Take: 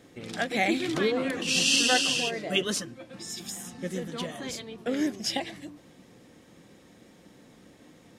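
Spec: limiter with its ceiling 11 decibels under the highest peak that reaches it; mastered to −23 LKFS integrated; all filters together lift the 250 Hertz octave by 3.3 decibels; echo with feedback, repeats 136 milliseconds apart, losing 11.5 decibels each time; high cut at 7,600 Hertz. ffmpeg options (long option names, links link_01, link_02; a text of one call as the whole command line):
ffmpeg -i in.wav -af "lowpass=7600,equalizer=frequency=250:width_type=o:gain=4,alimiter=limit=-20.5dB:level=0:latency=1,aecho=1:1:136|272|408:0.266|0.0718|0.0194,volume=7.5dB" out.wav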